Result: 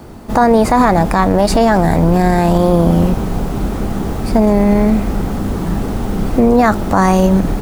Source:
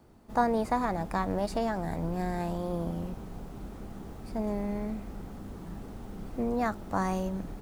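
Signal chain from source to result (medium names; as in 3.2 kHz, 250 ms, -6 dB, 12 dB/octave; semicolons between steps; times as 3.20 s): loudness maximiser +24.5 dB; trim -1 dB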